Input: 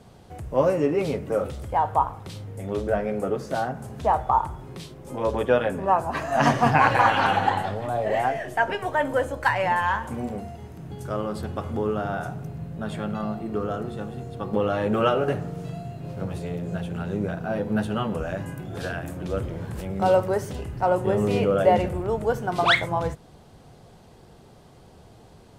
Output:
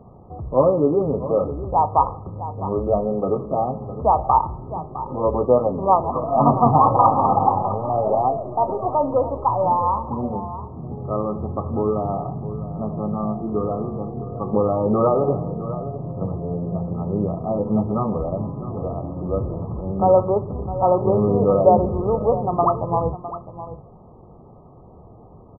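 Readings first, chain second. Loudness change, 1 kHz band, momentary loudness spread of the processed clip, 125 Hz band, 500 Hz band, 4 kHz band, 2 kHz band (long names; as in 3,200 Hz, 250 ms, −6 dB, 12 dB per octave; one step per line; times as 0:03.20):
+4.0 dB, +4.5 dB, 13 LU, +4.5 dB, +4.5 dB, below −40 dB, below −40 dB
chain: linear-phase brick-wall low-pass 1,300 Hz
single-tap delay 658 ms −13.5 dB
level +4.5 dB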